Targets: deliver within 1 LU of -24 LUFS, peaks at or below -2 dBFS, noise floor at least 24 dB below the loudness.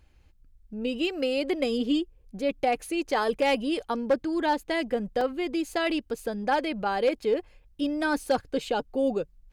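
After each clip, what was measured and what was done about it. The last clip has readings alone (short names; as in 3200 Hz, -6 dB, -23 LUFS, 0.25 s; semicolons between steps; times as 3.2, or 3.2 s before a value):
clipped 0.3%; flat tops at -16.5 dBFS; dropouts 1; longest dropout 2.6 ms; loudness -28.0 LUFS; peak -16.5 dBFS; loudness target -24.0 LUFS
-> clip repair -16.5 dBFS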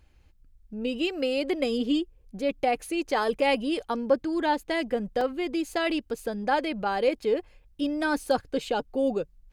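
clipped 0.0%; dropouts 1; longest dropout 2.6 ms
-> interpolate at 5.21, 2.6 ms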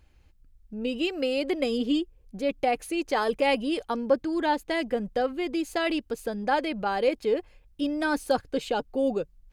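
dropouts 0; loudness -28.0 LUFS; peak -12.0 dBFS; loudness target -24.0 LUFS
-> gain +4 dB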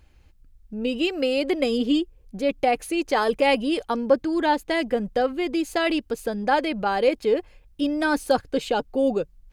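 loudness -24.0 LUFS; peak -8.0 dBFS; noise floor -56 dBFS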